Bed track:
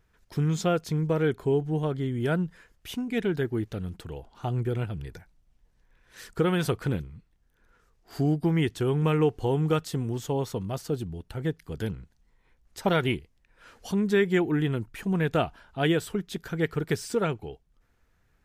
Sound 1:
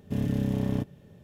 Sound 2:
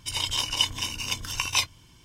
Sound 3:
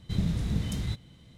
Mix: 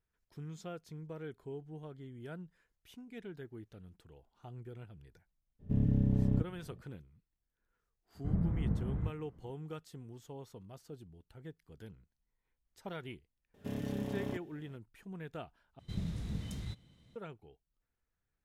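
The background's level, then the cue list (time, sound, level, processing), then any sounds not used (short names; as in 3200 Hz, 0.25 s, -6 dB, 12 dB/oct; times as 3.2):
bed track -19.5 dB
5.59 add 1 -12.5 dB, fades 0.02 s + tilt -4 dB/oct
8.15 add 3 -4.5 dB + LPF 1400 Hz 24 dB/oct
13.54 add 1 -5 dB + tone controls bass -9 dB, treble -1 dB
15.79 replace with 3 -10 dB
not used: 2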